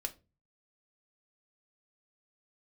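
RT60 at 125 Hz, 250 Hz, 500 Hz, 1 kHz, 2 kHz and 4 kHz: 0.65 s, 0.45 s, 0.35 s, 0.25 s, 0.20 s, 0.20 s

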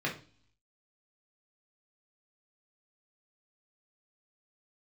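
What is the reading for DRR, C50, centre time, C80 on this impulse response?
-3.5 dB, 9.5 dB, 20 ms, 16.0 dB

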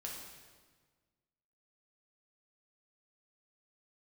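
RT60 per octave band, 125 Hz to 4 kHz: 1.8 s, 1.8 s, 1.5 s, 1.4 s, 1.3 s, 1.3 s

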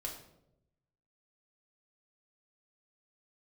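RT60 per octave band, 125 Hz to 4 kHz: 1.3 s, 1.1 s, 1.0 s, 0.70 s, 0.55 s, 0.50 s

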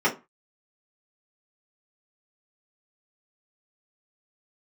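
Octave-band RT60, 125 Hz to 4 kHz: 0.30 s, 0.30 s, 0.25 s, 0.30 s, 0.25 s, 0.15 s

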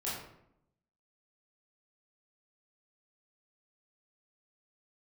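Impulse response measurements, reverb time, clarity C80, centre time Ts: 0.75 s, 5.0 dB, 58 ms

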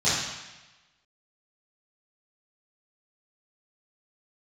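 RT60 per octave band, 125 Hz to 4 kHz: 1.1 s, 1.0 s, 1.1 s, 1.1 s, 1.2 s, 1.1 s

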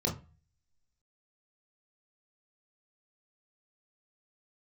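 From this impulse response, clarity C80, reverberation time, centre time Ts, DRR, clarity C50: 17.5 dB, 0.35 s, 20 ms, -1.5 dB, 11.5 dB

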